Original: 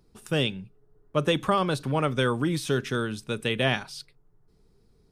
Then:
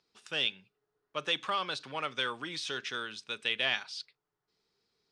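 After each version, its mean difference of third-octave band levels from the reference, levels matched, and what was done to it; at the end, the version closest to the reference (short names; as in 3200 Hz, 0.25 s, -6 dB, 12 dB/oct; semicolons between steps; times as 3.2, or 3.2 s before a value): 7.5 dB: in parallel at -6 dB: soft clip -18 dBFS, distortion -14 dB; on the sum: Bessel low-pass 3400 Hz, order 4; differentiator; gain +6.5 dB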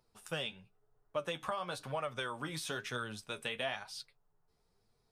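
5.0 dB: resonant low shelf 480 Hz -9 dB, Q 1.5; compressor 5:1, threshold -28 dBFS, peak gain reduction 9 dB; flange 1 Hz, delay 7.7 ms, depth 6 ms, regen +39%; gain -2 dB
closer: second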